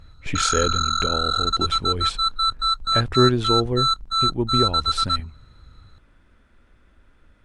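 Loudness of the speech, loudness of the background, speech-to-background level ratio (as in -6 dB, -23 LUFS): -25.5 LUFS, -21.0 LUFS, -4.5 dB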